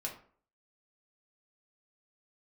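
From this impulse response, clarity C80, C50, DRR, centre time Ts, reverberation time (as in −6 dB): 13.0 dB, 8.5 dB, −1.5 dB, 20 ms, 0.50 s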